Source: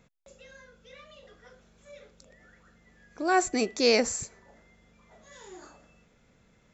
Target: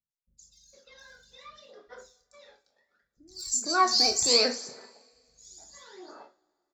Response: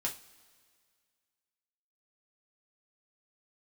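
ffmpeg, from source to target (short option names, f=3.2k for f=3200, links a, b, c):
-filter_complex "[0:a]agate=range=-31dB:threshold=-54dB:ratio=16:detection=peak,bass=f=250:g=-14,treble=f=4k:g=-9,aphaser=in_gain=1:out_gain=1:delay=1.3:decay=0.65:speed=0.69:type=sinusoidal,highshelf=f=3.6k:t=q:w=3:g=9.5,acrossover=split=180|4600[a][b][c];[c]adelay=110[d];[b]adelay=460[e];[a][e][d]amix=inputs=3:normalize=0,asplit=2[f][g];[1:a]atrim=start_sample=2205,adelay=25[h];[g][h]afir=irnorm=-1:irlink=0,volume=-7.5dB[i];[f][i]amix=inputs=2:normalize=0"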